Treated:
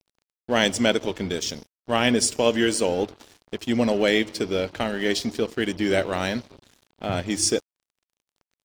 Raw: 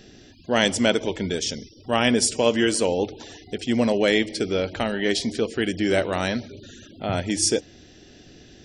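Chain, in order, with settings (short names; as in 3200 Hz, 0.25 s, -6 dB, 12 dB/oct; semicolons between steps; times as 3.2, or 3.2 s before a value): crossover distortion -39.5 dBFS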